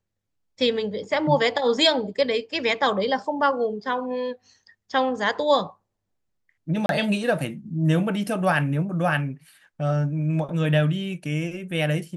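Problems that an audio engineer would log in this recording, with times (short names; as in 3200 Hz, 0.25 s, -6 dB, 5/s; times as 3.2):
6.86–6.89 gap 32 ms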